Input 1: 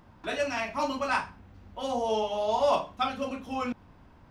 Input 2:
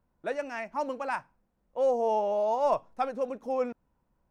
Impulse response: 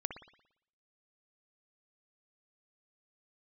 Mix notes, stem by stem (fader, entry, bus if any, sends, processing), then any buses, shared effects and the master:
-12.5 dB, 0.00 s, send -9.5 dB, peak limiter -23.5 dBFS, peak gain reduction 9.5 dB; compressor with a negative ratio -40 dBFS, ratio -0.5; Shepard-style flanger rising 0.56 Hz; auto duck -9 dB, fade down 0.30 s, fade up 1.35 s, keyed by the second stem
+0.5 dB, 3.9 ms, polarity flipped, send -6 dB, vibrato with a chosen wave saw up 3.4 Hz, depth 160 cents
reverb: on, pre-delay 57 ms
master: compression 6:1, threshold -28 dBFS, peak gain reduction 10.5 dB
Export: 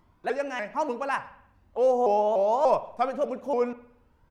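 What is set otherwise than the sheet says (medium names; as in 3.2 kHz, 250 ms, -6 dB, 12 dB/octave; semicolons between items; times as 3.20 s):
stem 2: polarity flipped; master: missing compression 6:1, threshold -28 dBFS, peak gain reduction 10.5 dB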